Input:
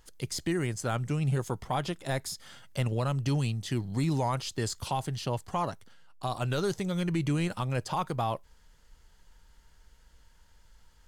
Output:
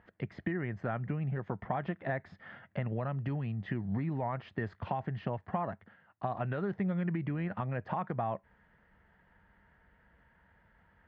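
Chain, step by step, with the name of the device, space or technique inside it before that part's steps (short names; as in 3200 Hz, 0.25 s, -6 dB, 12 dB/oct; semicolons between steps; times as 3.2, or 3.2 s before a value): bass amplifier (compressor, threshold -33 dBFS, peak gain reduction 8.5 dB; speaker cabinet 85–2200 Hz, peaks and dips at 93 Hz +5 dB, 200 Hz +8 dB, 680 Hz +6 dB, 1800 Hz +8 dB)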